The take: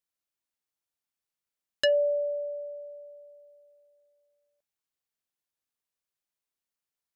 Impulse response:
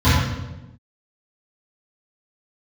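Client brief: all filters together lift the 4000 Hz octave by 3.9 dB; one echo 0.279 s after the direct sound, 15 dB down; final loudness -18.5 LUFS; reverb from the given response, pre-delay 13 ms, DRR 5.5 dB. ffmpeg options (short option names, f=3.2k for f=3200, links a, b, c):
-filter_complex "[0:a]equalizer=f=4k:t=o:g=6.5,aecho=1:1:279:0.178,asplit=2[a][b];[1:a]atrim=start_sample=2205,adelay=13[c];[b][c]afir=irnorm=-1:irlink=0,volume=-29dB[d];[a][d]amix=inputs=2:normalize=0,volume=7.5dB"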